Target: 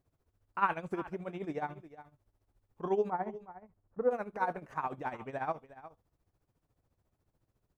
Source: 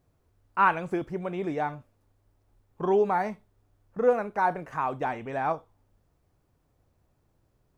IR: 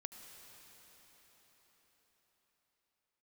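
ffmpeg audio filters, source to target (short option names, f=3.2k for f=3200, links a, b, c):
-filter_complex "[0:a]asettb=1/sr,asplit=3[a][b][c];[a]atrim=end=3.104[d];[b]atrim=start=3.1:end=4.11,asetpts=PTS-STARTPTS,afade=t=in:d=0.004:c=qsin,afade=t=out:st=1.006:d=0.004:c=qsin,lowpass=1.3k[e];[c]atrim=start=4.106[f];[d][e]acrossfade=d=0.004:c1=hsin:c2=qsin[g];[g][f]acrossfade=d=0.004:c1=qsin:c2=hsin,aecho=1:1:363:0.168,tremolo=f=14:d=0.76,volume=-4.5dB"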